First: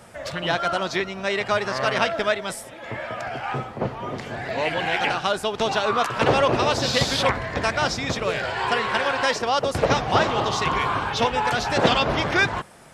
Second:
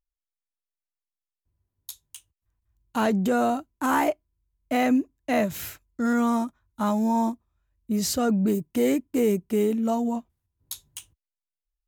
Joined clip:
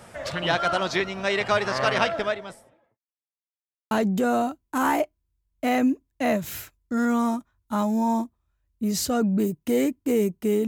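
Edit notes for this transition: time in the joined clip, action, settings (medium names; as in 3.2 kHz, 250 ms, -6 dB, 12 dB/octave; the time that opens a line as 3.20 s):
first
1.87–2.99 s: studio fade out
2.99–3.91 s: mute
3.91 s: go over to second from 2.99 s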